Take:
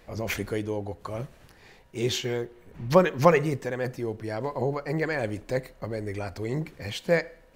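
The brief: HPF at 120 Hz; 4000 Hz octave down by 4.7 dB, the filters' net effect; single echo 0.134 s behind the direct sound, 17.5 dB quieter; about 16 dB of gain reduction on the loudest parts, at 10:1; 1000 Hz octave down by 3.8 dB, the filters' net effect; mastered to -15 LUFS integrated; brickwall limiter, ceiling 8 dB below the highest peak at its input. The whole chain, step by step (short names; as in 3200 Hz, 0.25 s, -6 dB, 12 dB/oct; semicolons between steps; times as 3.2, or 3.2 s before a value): HPF 120 Hz; bell 1000 Hz -4.5 dB; bell 4000 Hz -6 dB; compressor 10:1, threshold -30 dBFS; limiter -26.5 dBFS; echo 0.134 s -17.5 dB; gain +23.5 dB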